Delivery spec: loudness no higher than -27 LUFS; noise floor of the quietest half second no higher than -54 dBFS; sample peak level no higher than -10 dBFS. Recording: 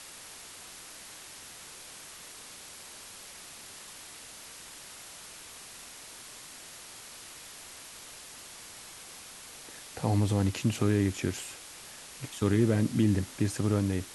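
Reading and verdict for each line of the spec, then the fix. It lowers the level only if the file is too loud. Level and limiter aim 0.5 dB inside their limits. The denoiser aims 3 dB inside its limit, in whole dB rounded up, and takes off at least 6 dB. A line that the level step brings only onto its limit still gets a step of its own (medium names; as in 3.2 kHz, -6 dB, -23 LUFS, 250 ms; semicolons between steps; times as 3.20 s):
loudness -29.0 LUFS: pass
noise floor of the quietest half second -47 dBFS: fail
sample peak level -13.5 dBFS: pass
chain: noise reduction 10 dB, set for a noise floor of -47 dBFS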